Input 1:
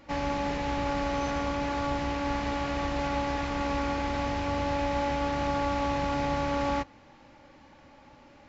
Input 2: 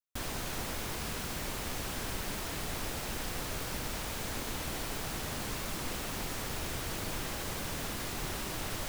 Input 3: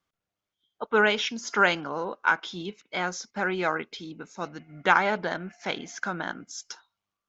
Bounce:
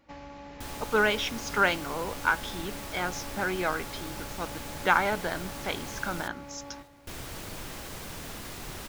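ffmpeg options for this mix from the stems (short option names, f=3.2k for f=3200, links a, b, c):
-filter_complex "[0:a]acompressor=threshold=-31dB:ratio=6,volume=-10dB,asplit=2[a][b];[b]volume=-13.5dB[c];[1:a]adelay=450,volume=-3dB,asplit=3[d][e][f];[d]atrim=end=6.28,asetpts=PTS-STARTPTS,afade=t=out:st=6.276:d=0.004:c=hsin[g];[e]atrim=start=6.28:end=7.07,asetpts=PTS-STARTPTS,volume=0[h];[f]atrim=start=7.07,asetpts=PTS-STARTPTS,afade=t=in:d=0.004:c=hsin[i];[g][h][i]concat=n=3:v=0:a=1,asplit=2[j][k];[k]volume=-20.5dB[l];[2:a]volume=-2.5dB[m];[c][l]amix=inputs=2:normalize=0,aecho=0:1:600|1200|1800|2400|3000|3600|4200|4800:1|0.55|0.303|0.166|0.0915|0.0503|0.0277|0.0152[n];[a][j][m][n]amix=inputs=4:normalize=0"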